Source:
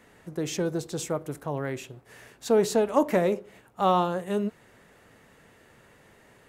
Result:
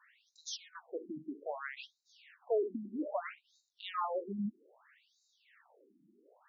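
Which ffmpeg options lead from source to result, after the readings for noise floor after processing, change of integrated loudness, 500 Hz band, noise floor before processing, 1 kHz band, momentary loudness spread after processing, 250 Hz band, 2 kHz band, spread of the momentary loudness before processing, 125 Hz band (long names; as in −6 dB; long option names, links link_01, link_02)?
−81 dBFS, −12.5 dB, −13.0 dB, −58 dBFS, −13.0 dB, 15 LU, −12.5 dB, −9.0 dB, 11 LU, below −15 dB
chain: -filter_complex "[0:a]acrossover=split=670|6200[link_01][link_02][link_03];[link_01]asoftclip=type=hard:threshold=-28.5dB[link_04];[link_04][link_02][link_03]amix=inputs=3:normalize=0,afftfilt=real='re*between(b*sr/1024,240*pow(5300/240,0.5+0.5*sin(2*PI*0.62*pts/sr))/1.41,240*pow(5300/240,0.5+0.5*sin(2*PI*0.62*pts/sr))*1.41)':imag='im*between(b*sr/1024,240*pow(5300/240,0.5+0.5*sin(2*PI*0.62*pts/sr))/1.41,240*pow(5300/240,0.5+0.5*sin(2*PI*0.62*pts/sr))*1.41)':win_size=1024:overlap=0.75,volume=-2.5dB"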